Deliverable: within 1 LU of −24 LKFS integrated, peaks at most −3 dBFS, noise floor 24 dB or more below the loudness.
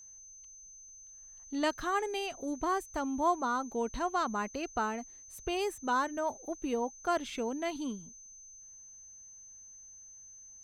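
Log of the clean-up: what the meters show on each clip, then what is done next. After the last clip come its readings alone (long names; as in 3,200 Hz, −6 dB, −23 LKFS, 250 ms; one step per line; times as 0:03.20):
interfering tone 6,200 Hz; level of the tone −50 dBFS; integrated loudness −34.0 LKFS; sample peak −19.0 dBFS; target loudness −24.0 LKFS
→ notch filter 6,200 Hz, Q 30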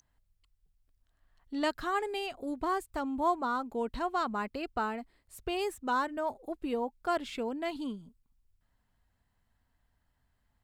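interfering tone none found; integrated loudness −34.0 LKFS; sample peak −19.0 dBFS; target loudness −24.0 LKFS
→ level +10 dB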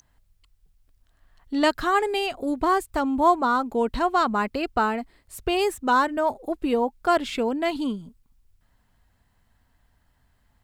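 integrated loudness −24.0 LKFS; sample peak −9.0 dBFS; background noise floor −67 dBFS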